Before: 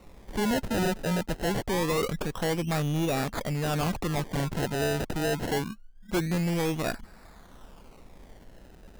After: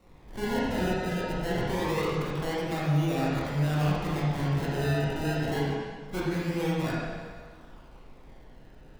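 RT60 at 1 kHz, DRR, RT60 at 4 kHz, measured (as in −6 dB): 1.6 s, −7.5 dB, 1.5 s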